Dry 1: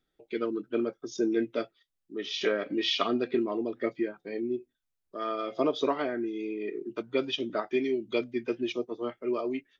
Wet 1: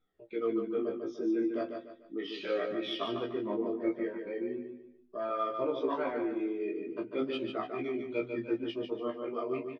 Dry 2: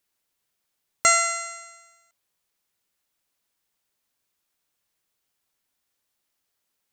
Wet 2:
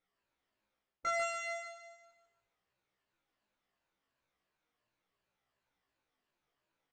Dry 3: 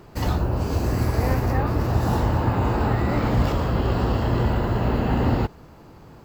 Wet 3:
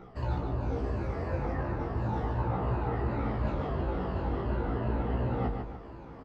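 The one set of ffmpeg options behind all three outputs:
-filter_complex "[0:a]afftfilt=real='re*pow(10,11/40*sin(2*PI*(1.4*log(max(b,1)*sr/1024/100)/log(2)-(-2.8)*(pts-256)/sr)))':imag='im*pow(10,11/40*sin(2*PI*(1.4*log(max(b,1)*sr/1024/100)/log(2)-(-2.8)*(pts-256)/sr)))':win_size=1024:overlap=0.75,bandreject=f=50:t=h:w=6,bandreject=f=100:t=h:w=6,bandreject=f=150:t=h:w=6,bandreject=f=200:t=h:w=6,bandreject=f=250:t=h:w=6,bandreject=f=300:t=h:w=6,areverse,acompressor=threshold=0.0355:ratio=5,areverse,flanger=delay=16.5:depth=4.6:speed=0.37,adynamicsmooth=sensitivity=0.5:basefreq=2700,asplit=2[s0][s1];[s1]adelay=15,volume=0.501[s2];[s0][s2]amix=inputs=2:normalize=0,aecho=1:1:147|294|441|588:0.501|0.175|0.0614|0.0215,volume=1.19"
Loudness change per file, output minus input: -3.5 LU, -16.0 LU, -9.5 LU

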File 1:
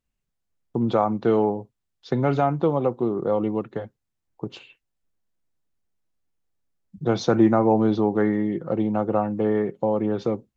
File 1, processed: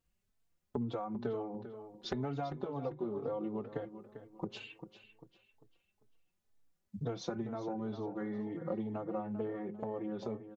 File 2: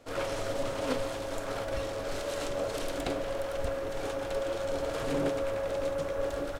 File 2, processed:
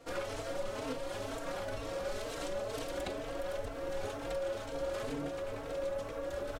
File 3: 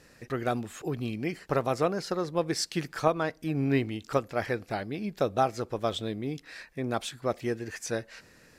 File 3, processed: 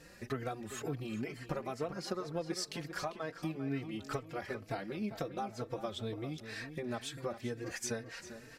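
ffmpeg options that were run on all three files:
-filter_complex "[0:a]acompressor=threshold=0.0178:ratio=16,asplit=2[s0][s1];[s1]adelay=396,lowpass=f=4800:p=1,volume=0.282,asplit=2[s2][s3];[s3]adelay=396,lowpass=f=4800:p=1,volume=0.39,asplit=2[s4][s5];[s5]adelay=396,lowpass=f=4800:p=1,volume=0.39,asplit=2[s6][s7];[s7]adelay=396,lowpass=f=4800:p=1,volume=0.39[s8];[s0][s2][s4][s6][s8]amix=inputs=5:normalize=0,asplit=2[s9][s10];[s10]adelay=3.9,afreqshift=2.1[s11];[s9][s11]amix=inputs=2:normalize=1,volume=1.5"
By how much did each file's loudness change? -17.0 LU, -5.5 LU, -9.0 LU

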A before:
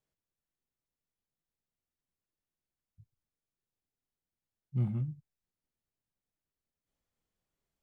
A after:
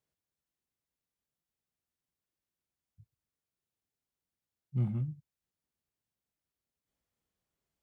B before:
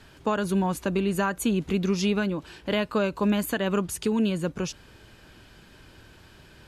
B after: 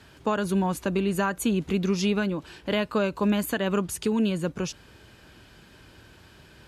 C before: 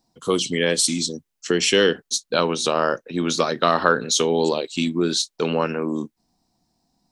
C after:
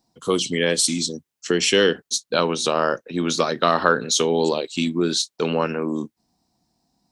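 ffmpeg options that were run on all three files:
-af "highpass=42"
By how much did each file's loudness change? 0.0 LU, 0.0 LU, 0.0 LU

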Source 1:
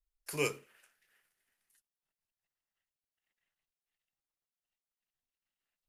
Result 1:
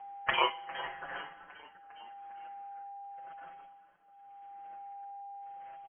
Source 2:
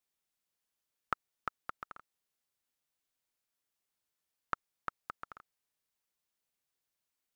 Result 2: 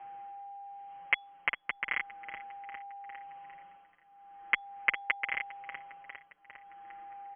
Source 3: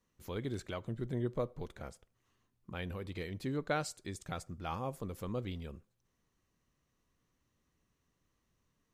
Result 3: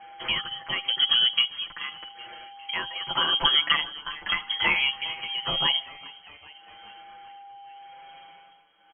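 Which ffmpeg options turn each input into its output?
-filter_complex "[0:a]highpass=f=100:w=0.5412,highpass=f=100:w=1.3066,lowshelf=f=380:g=-4,aecho=1:1:5.9:0.56,acompressor=threshold=0.00562:ratio=10,tremolo=f=0.86:d=0.81,asplit=6[s0][s1][s2][s3][s4][s5];[s1]adelay=404,afreqshift=34,volume=0.1[s6];[s2]adelay=808,afreqshift=68,volume=0.0631[s7];[s3]adelay=1212,afreqshift=102,volume=0.0398[s8];[s4]adelay=1616,afreqshift=136,volume=0.0251[s9];[s5]adelay=2020,afreqshift=170,volume=0.0157[s10];[s0][s6][s7][s8][s9][s10]amix=inputs=6:normalize=0,crystalizer=i=7:c=0,asoftclip=type=tanh:threshold=0.0531,aeval=exprs='val(0)+0.000282*sin(2*PI*2600*n/s)':c=same,lowpass=f=2900:t=q:w=0.5098,lowpass=f=2900:t=q:w=0.6013,lowpass=f=2900:t=q:w=0.9,lowpass=f=2900:t=q:w=2.563,afreqshift=-3400,alimiter=level_in=47.3:limit=0.891:release=50:level=0:latency=1,asplit=2[s11][s12];[s12]adelay=6,afreqshift=0.42[s13];[s11][s13]amix=inputs=2:normalize=1,volume=0.596"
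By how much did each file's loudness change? -2.5 LU, +9.0 LU, +16.0 LU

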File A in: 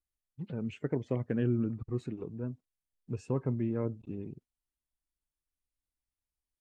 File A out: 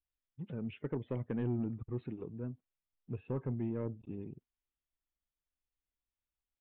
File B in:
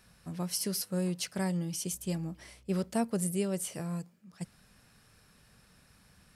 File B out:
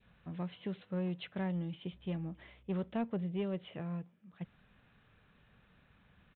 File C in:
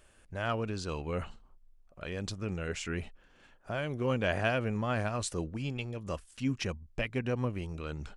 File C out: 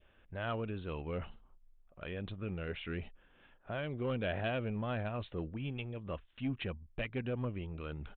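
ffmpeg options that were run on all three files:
-af "adynamicequalizer=threshold=0.00282:dfrequency=1300:dqfactor=1.4:tfrequency=1300:tqfactor=1.4:attack=5:release=100:ratio=0.375:range=2:mode=cutabove:tftype=bell,aresample=8000,asoftclip=type=tanh:threshold=0.0631,aresample=44100,volume=0.708"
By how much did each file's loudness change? -5.0 LU, -6.0 LU, -5.0 LU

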